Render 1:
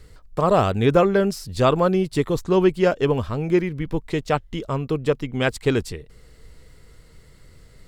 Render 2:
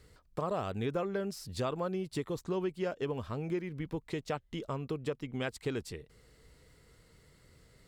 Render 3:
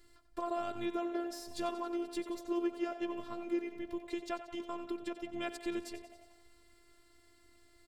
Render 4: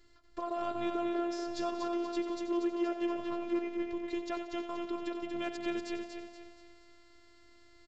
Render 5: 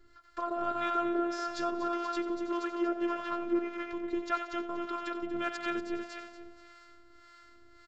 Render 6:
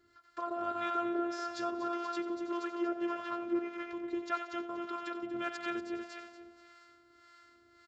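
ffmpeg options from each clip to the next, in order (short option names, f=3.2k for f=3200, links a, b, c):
-af "highpass=f=87:p=1,acompressor=threshold=-25dB:ratio=3,volume=-8dB"
-filter_complex "[0:a]asplit=8[a][b][c][d][e][f][g][h];[b]adelay=91,afreqshift=71,volume=-12.5dB[i];[c]adelay=182,afreqshift=142,volume=-16.8dB[j];[d]adelay=273,afreqshift=213,volume=-21.1dB[k];[e]adelay=364,afreqshift=284,volume=-25.4dB[l];[f]adelay=455,afreqshift=355,volume=-29.7dB[m];[g]adelay=546,afreqshift=426,volume=-34dB[n];[h]adelay=637,afreqshift=497,volume=-38.3dB[o];[a][i][j][k][l][m][n][o]amix=inputs=8:normalize=0,afftfilt=real='hypot(re,im)*cos(PI*b)':imag='0':win_size=512:overlap=0.75,volume=1dB"
-af "aresample=16000,volume=26dB,asoftclip=hard,volume=-26dB,aresample=44100,aecho=1:1:238|476|714|952:0.501|0.18|0.065|0.0234"
-filter_complex "[0:a]equalizer=f=1.4k:t=o:w=0.6:g=13,acrossover=split=650[a][b];[a]aeval=exprs='val(0)*(1-0.7/2+0.7/2*cos(2*PI*1.7*n/s))':c=same[c];[b]aeval=exprs='val(0)*(1-0.7/2-0.7/2*cos(2*PI*1.7*n/s))':c=same[d];[c][d]amix=inputs=2:normalize=0,volume=3.5dB"
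-af "highpass=88,volume=-3dB"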